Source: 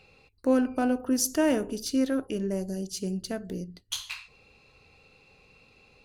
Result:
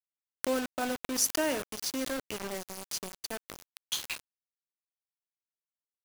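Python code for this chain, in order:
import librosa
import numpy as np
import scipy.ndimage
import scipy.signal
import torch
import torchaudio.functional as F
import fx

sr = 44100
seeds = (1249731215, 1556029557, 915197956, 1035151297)

y = fx.highpass(x, sr, hz=890.0, slope=6)
y = fx.quant_dither(y, sr, seeds[0], bits=6, dither='none')
y = fx.pre_swell(y, sr, db_per_s=120.0)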